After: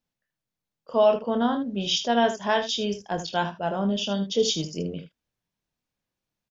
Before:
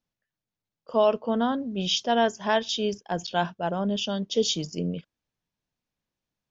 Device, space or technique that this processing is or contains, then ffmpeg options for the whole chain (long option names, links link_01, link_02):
slapback doubling: -filter_complex "[0:a]asplit=3[link_01][link_02][link_03];[link_02]adelay=25,volume=-7.5dB[link_04];[link_03]adelay=77,volume=-11dB[link_05];[link_01][link_04][link_05]amix=inputs=3:normalize=0"